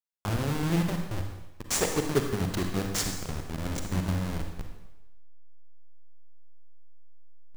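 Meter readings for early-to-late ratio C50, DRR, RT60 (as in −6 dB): 4.5 dB, 3.5 dB, 0.95 s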